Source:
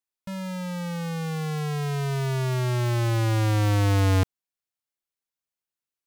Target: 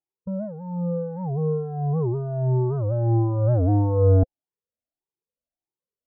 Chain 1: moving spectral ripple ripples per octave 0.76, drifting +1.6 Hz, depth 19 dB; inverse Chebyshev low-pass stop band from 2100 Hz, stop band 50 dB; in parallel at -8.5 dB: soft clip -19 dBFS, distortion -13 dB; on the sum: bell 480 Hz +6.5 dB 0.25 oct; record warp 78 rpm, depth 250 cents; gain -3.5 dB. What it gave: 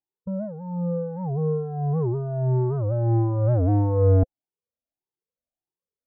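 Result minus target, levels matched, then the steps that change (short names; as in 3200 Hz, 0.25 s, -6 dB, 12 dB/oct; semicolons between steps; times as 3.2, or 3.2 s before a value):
soft clip: distortion +11 dB
change: soft clip -11 dBFS, distortion -24 dB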